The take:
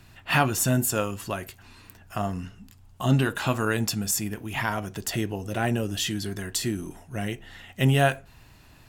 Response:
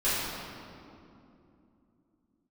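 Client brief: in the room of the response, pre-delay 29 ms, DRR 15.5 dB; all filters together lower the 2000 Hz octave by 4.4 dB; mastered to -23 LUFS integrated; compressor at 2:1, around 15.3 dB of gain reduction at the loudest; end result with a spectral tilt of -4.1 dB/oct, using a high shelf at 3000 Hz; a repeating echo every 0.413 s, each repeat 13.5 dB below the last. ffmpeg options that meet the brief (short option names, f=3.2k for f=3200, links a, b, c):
-filter_complex "[0:a]equalizer=f=2k:t=o:g=-8,highshelf=f=3k:g=4.5,acompressor=threshold=-45dB:ratio=2,aecho=1:1:413|826:0.211|0.0444,asplit=2[a][b];[1:a]atrim=start_sample=2205,adelay=29[c];[b][c]afir=irnorm=-1:irlink=0,volume=-28dB[d];[a][d]amix=inputs=2:normalize=0,volume=16dB"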